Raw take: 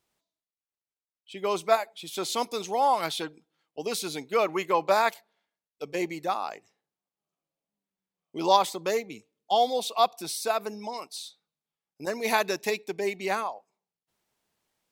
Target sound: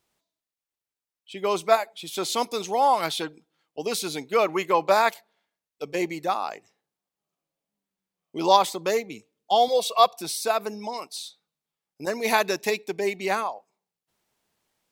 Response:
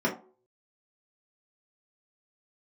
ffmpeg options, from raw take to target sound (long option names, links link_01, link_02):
-filter_complex "[0:a]asettb=1/sr,asplit=3[link_01][link_02][link_03];[link_01]atrim=end=9.684[link_04];[link_02]atrim=start=9.68:end=10.14,asetpts=PTS-STARTPTS,afade=type=in:duration=0.004:curve=qsin,afade=type=out:start_time=0.456:duration=0.004:curve=qsin,aecho=1:1:1.8:0.66,atrim=end_sample=20286[link_05];[link_03]atrim=start=10.136[link_06];[link_04][link_05]acrossfade=duration=0.004:curve1=hsin:curve2=qsin[link_07];[link_07][link_06]acrossfade=duration=0.004:curve1=qsin:curve2=hsin,volume=3dB"